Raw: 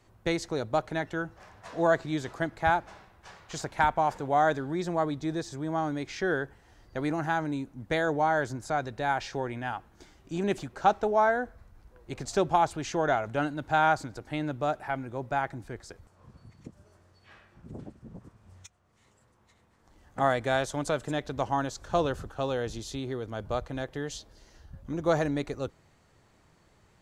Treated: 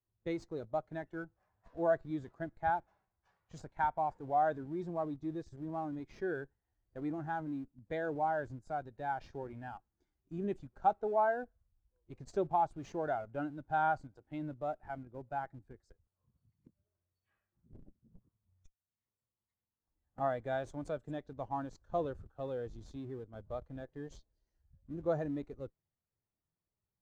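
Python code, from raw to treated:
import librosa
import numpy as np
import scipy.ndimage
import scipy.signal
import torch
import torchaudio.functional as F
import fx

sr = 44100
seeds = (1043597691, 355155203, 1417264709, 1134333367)

p1 = fx.schmitt(x, sr, flips_db=-35.0)
p2 = x + (p1 * 10.0 ** (-8.0 / 20.0))
p3 = fx.spectral_expand(p2, sr, expansion=1.5)
y = p3 * 10.0 ** (-7.5 / 20.0)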